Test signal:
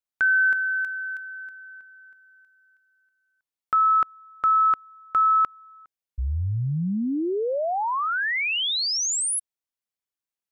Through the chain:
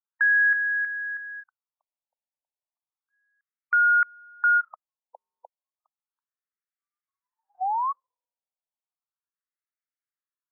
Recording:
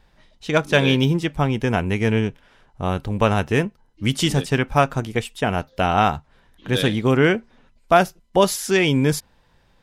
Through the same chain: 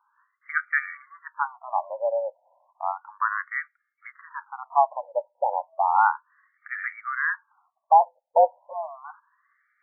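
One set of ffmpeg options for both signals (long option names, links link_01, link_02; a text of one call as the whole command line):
ffmpeg -i in.wav -af "highpass=frequency=180:width_type=q:width=0.5412,highpass=frequency=180:width_type=q:width=1.307,lowpass=frequency=2200:width_type=q:width=0.5176,lowpass=frequency=2200:width_type=q:width=0.7071,lowpass=frequency=2200:width_type=q:width=1.932,afreqshift=130,afftfilt=real='re*between(b*sr/1024,680*pow(1700/680,0.5+0.5*sin(2*PI*0.33*pts/sr))/1.41,680*pow(1700/680,0.5+0.5*sin(2*PI*0.33*pts/sr))*1.41)':imag='im*between(b*sr/1024,680*pow(1700/680,0.5+0.5*sin(2*PI*0.33*pts/sr))/1.41,680*pow(1700/680,0.5+0.5*sin(2*PI*0.33*pts/sr))*1.41)':win_size=1024:overlap=0.75" out.wav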